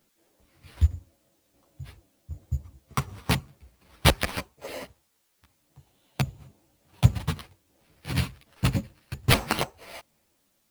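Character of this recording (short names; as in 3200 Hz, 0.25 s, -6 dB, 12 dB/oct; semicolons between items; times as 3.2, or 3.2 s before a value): aliases and images of a low sample rate 7000 Hz, jitter 0%; tremolo saw down 1.3 Hz, depth 65%; a quantiser's noise floor 12-bit, dither triangular; a shimmering, thickened sound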